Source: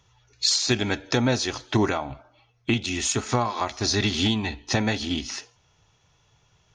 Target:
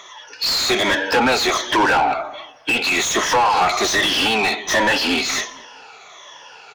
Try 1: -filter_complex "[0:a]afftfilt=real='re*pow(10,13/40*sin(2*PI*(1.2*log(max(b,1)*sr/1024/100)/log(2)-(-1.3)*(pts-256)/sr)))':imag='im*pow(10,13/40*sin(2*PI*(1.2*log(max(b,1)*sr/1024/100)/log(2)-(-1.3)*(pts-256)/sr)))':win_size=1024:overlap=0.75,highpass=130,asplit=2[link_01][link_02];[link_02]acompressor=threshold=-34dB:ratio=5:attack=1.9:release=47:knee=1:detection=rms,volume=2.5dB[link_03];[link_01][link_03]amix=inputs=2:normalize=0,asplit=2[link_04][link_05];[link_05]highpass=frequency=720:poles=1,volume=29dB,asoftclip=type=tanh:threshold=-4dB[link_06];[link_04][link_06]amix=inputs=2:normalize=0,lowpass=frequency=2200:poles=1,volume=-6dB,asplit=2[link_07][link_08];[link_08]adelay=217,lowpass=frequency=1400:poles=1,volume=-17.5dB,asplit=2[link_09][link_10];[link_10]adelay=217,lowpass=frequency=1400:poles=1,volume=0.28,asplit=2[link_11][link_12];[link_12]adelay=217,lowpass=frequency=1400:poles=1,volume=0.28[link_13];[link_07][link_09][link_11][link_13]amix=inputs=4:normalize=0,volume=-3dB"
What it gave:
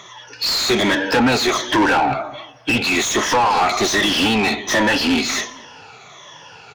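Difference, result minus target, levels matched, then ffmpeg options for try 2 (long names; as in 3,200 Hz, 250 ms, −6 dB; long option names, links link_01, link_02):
125 Hz band +6.5 dB
-filter_complex "[0:a]afftfilt=real='re*pow(10,13/40*sin(2*PI*(1.2*log(max(b,1)*sr/1024/100)/log(2)-(-1.3)*(pts-256)/sr)))':imag='im*pow(10,13/40*sin(2*PI*(1.2*log(max(b,1)*sr/1024/100)/log(2)-(-1.3)*(pts-256)/sr)))':win_size=1024:overlap=0.75,highpass=420,asplit=2[link_01][link_02];[link_02]acompressor=threshold=-34dB:ratio=5:attack=1.9:release=47:knee=1:detection=rms,volume=2.5dB[link_03];[link_01][link_03]amix=inputs=2:normalize=0,asplit=2[link_04][link_05];[link_05]highpass=frequency=720:poles=1,volume=29dB,asoftclip=type=tanh:threshold=-4dB[link_06];[link_04][link_06]amix=inputs=2:normalize=0,lowpass=frequency=2200:poles=1,volume=-6dB,asplit=2[link_07][link_08];[link_08]adelay=217,lowpass=frequency=1400:poles=1,volume=-17.5dB,asplit=2[link_09][link_10];[link_10]adelay=217,lowpass=frequency=1400:poles=1,volume=0.28,asplit=2[link_11][link_12];[link_12]adelay=217,lowpass=frequency=1400:poles=1,volume=0.28[link_13];[link_07][link_09][link_11][link_13]amix=inputs=4:normalize=0,volume=-3dB"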